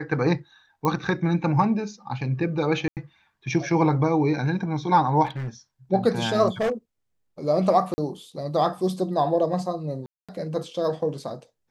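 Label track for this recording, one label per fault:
0.850000	0.850000	click −13 dBFS
2.880000	2.970000	drop-out 88 ms
5.250000	5.490000	clipping −27.5 dBFS
6.610000	6.720000	clipping −20 dBFS
7.940000	7.980000	drop-out 40 ms
10.060000	10.290000	drop-out 226 ms

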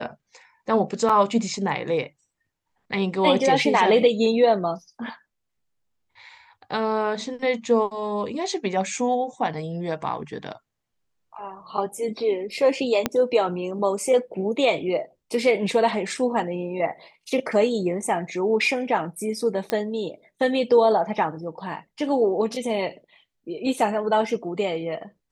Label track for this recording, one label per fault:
1.090000	1.090000	drop-out 5 ms
13.060000	13.060000	click −6 dBFS
19.700000	19.700000	click −10 dBFS

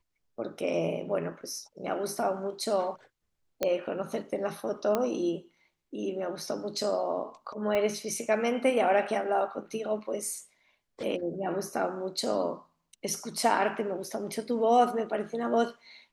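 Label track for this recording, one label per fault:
3.630000	3.630000	click −13 dBFS
4.950000	4.950000	click −14 dBFS
7.750000	7.750000	click −17 dBFS

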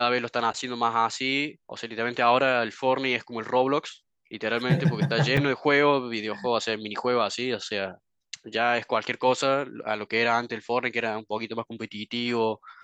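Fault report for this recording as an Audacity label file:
5.370000	5.370000	drop-out 4.1 ms

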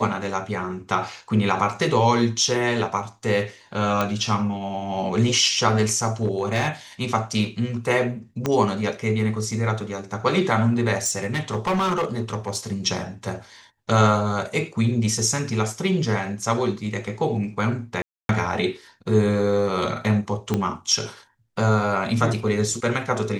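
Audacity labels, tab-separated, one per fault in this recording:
4.010000	4.010000	click −8 dBFS
6.230000	6.690000	clipping −16 dBFS
8.460000	8.460000	click −9 dBFS
11.040000	12.730000	clipping −18.5 dBFS
18.020000	18.290000	drop-out 272 ms
20.540000	20.540000	click −9 dBFS

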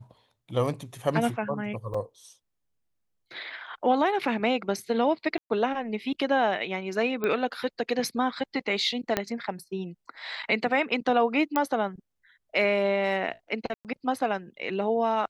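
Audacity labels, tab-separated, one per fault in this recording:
1.940000	1.940000	drop-out 4.7 ms
5.380000	5.500000	drop-out 122 ms
7.240000	7.240000	click −16 dBFS
9.170000	9.170000	click −9 dBFS
11.560000	11.560000	click −11 dBFS
13.740000	13.850000	drop-out 108 ms

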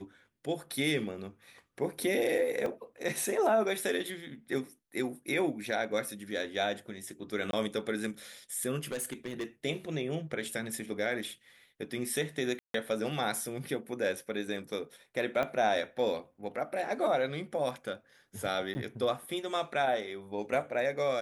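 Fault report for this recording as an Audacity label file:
2.660000	2.660000	drop-out 2.5 ms
7.510000	7.530000	drop-out 22 ms
8.920000	9.440000	clipping −31 dBFS
12.590000	12.740000	drop-out 153 ms
15.430000	15.430000	click −20 dBFS
18.740000	18.750000	drop-out 10 ms

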